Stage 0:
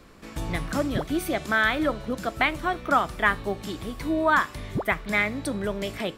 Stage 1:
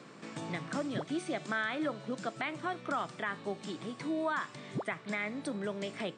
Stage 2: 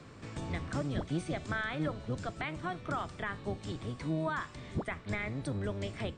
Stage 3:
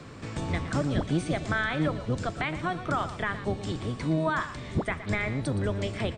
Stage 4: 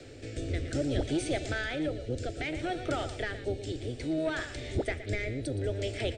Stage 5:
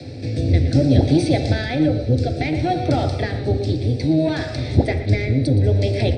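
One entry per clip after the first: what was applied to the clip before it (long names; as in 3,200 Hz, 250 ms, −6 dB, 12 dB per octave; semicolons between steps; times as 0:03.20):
brick-wall band-pass 110–9,200 Hz; brickwall limiter −14.5 dBFS, peak gain reduction 8 dB; multiband upward and downward compressor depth 40%; level −8.5 dB
sub-octave generator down 1 octave, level +4 dB; level −2 dB
single-tap delay 118 ms −13 dB; level +7 dB
soft clipping −20 dBFS, distortion −19 dB; phaser with its sweep stopped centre 440 Hz, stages 4; rotating-speaker cabinet horn 0.6 Hz; level +4 dB
convolution reverb RT60 1.0 s, pre-delay 3 ms, DRR 6 dB; level +3.5 dB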